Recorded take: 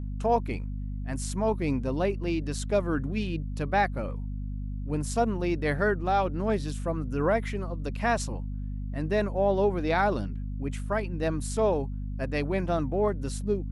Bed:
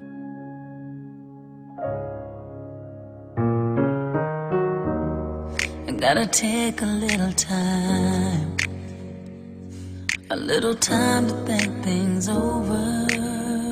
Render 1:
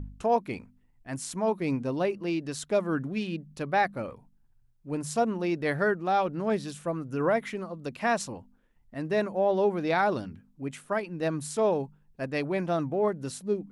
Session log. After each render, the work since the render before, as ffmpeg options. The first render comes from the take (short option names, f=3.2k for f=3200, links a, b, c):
-af "bandreject=f=50:t=h:w=4,bandreject=f=100:t=h:w=4,bandreject=f=150:t=h:w=4,bandreject=f=200:t=h:w=4,bandreject=f=250:t=h:w=4"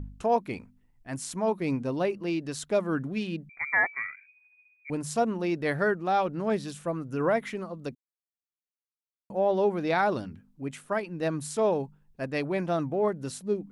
-filter_complex "[0:a]asettb=1/sr,asplit=3[a][b][c];[a]atrim=end=3.494[d];[b]atrim=start=3.49:end=4.9,asetpts=PTS-STARTPTS,afade=t=in:d=0.004:c=qsin,afade=t=out:st=1.406:d=0.004:c=qsin,lowpass=f=2.1k:t=q:w=0.5098,lowpass=f=2.1k:t=q:w=0.6013,lowpass=f=2.1k:t=q:w=0.9,lowpass=f=2.1k:t=q:w=2.563,afreqshift=-2500[e];[c]atrim=start=4.896[f];[d][e]acrossfade=d=0.004:c1=hsin:c2=qsin[g];[g][f]acrossfade=d=0.004:c1=qsin:c2=hsin,asplit=3[h][i][j];[h]atrim=end=7.95,asetpts=PTS-STARTPTS,afade=t=out:st=7.946:d=0.004:c=hsin[k];[i]atrim=start=7.95:end=9.3,asetpts=PTS-STARTPTS,volume=0[l];[j]atrim=start=9.3,asetpts=PTS-STARTPTS,afade=t=in:d=0.004:c=hsin[m];[k][l][m]concat=n=3:v=0:a=1"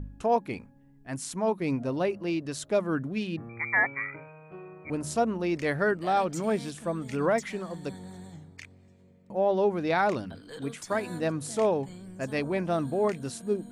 -filter_complex "[1:a]volume=-22.5dB[a];[0:a][a]amix=inputs=2:normalize=0"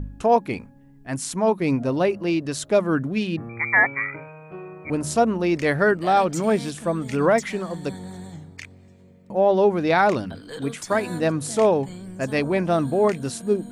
-af "volume=7dB"